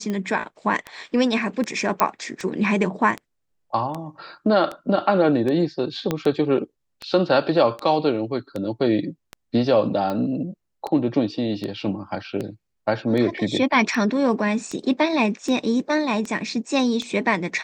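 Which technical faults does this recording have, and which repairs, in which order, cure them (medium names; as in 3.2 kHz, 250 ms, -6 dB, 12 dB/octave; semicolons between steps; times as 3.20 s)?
tick 78 rpm -16 dBFS
2.00 s: pop -4 dBFS
6.11 s: pop -9 dBFS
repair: de-click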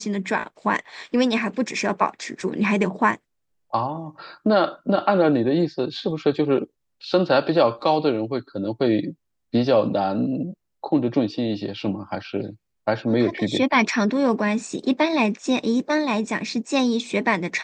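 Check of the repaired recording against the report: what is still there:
6.11 s: pop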